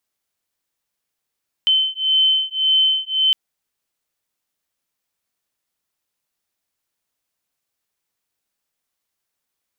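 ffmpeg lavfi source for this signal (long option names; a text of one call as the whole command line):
ffmpeg -f lavfi -i "aevalsrc='0.133*(sin(2*PI*3070*t)+sin(2*PI*3071.8*t))':duration=1.66:sample_rate=44100" out.wav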